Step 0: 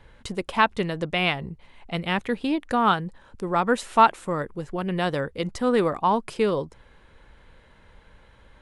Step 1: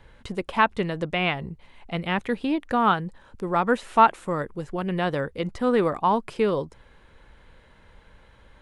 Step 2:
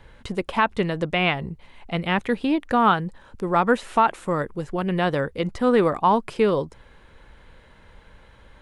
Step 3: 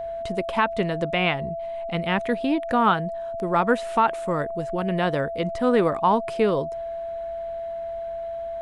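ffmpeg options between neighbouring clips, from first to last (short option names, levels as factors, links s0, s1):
-filter_complex "[0:a]acrossover=split=3400[s0][s1];[s1]acompressor=threshold=0.00501:ratio=4:attack=1:release=60[s2];[s0][s2]amix=inputs=2:normalize=0"
-af "alimiter=level_in=2.99:limit=0.891:release=50:level=0:latency=1,volume=0.473"
-af "aeval=exprs='val(0)+0.0447*sin(2*PI*670*n/s)':c=same,volume=0.841"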